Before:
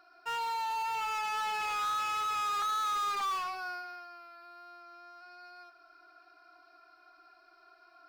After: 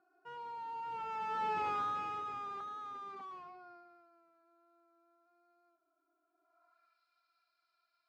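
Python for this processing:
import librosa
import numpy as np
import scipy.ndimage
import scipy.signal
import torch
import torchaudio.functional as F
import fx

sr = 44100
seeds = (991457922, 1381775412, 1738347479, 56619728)

y = fx.doppler_pass(x, sr, speed_mps=9, closest_m=3.0, pass_at_s=1.62)
y = fx.filter_sweep_bandpass(y, sr, from_hz=220.0, to_hz=3600.0, start_s=6.29, end_s=6.99, q=0.99)
y = y * librosa.db_to_amplitude(12.5)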